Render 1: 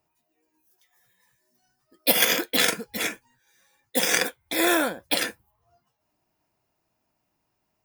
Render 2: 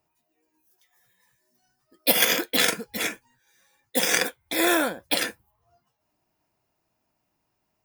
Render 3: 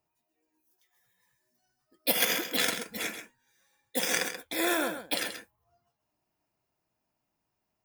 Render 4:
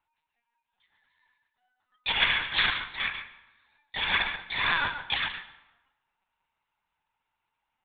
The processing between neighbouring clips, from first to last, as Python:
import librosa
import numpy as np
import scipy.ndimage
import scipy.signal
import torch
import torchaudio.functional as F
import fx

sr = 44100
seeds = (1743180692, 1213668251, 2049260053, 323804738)

y1 = x
y2 = y1 + 10.0 ** (-9.5 / 20.0) * np.pad(y1, (int(132 * sr / 1000.0), 0))[:len(y1)]
y2 = y2 * librosa.db_to_amplitude(-6.5)
y3 = fx.brickwall_highpass(y2, sr, low_hz=720.0)
y3 = fx.lpc_vocoder(y3, sr, seeds[0], excitation='pitch_kept', order=10)
y3 = fx.rev_plate(y3, sr, seeds[1], rt60_s=0.98, hf_ratio=0.75, predelay_ms=90, drr_db=15.0)
y3 = y3 * librosa.db_to_amplitude(6.0)